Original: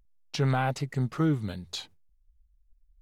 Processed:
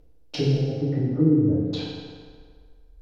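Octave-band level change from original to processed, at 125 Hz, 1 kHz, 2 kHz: +5.0 dB, below −10 dB, can't be measured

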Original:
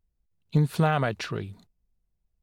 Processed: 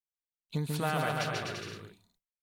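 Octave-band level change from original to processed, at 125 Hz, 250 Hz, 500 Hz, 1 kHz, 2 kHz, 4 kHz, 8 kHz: −9.5, −8.5, −5.5, −4.0, −2.0, +0.5, +2.5 decibels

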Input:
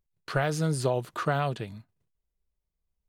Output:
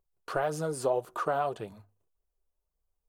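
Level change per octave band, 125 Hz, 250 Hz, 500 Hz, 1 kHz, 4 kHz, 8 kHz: −12.5, −7.5, 0.0, 0.0, −8.5, −3.5 decibels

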